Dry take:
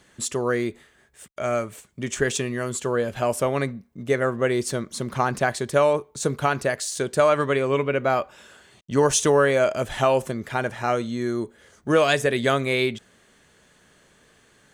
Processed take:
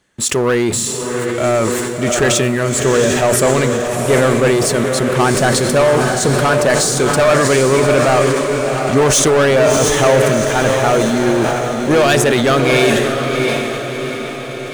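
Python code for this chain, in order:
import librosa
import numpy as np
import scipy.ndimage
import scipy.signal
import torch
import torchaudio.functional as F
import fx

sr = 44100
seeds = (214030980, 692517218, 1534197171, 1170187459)

y = fx.leveller(x, sr, passes=3)
y = fx.echo_diffused(y, sr, ms=709, feedback_pct=55, wet_db=-4.5)
y = fx.sustainer(y, sr, db_per_s=25.0)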